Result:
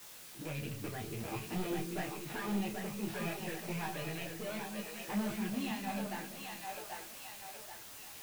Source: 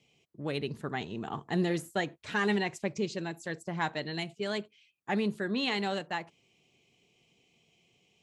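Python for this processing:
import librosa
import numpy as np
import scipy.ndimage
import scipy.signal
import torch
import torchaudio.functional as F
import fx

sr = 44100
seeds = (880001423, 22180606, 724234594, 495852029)

p1 = fx.rattle_buzz(x, sr, strikes_db=-38.0, level_db=-25.0)
p2 = scipy.signal.sosfilt(scipy.signal.butter(2, 3400.0, 'lowpass', fs=sr, output='sos'), p1)
p3 = fx.low_shelf(p2, sr, hz=500.0, db=8.0)
p4 = fx.level_steps(p3, sr, step_db=11)
p5 = p3 + F.gain(torch.from_numpy(p4), 2.0).numpy()
p6 = fx.env_flanger(p5, sr, rest_ms=10.0, full_db=-15.0)
p7 = fx.comb_fb(p6, sr, f0_hz=110.0, decay_s=0.24, harmonics='all', damping=0.0, mix_pct=70)
p8 = 10.0 ** (-30.5 / 20.0) * np.tanh(p7 / 10.0 ** (-30.5 / 20.0))
p9 = fx.quant_dither(p8, sr, seeds[0], bits=8, dither='triangular')
p10 = fx.echo_split(p9, sr, split_hz=420.0, low_ms=196, high_ms=785, feedback_pct=52, wet_db=-4)
y = fx.detune_double(p10, sr, cents=20)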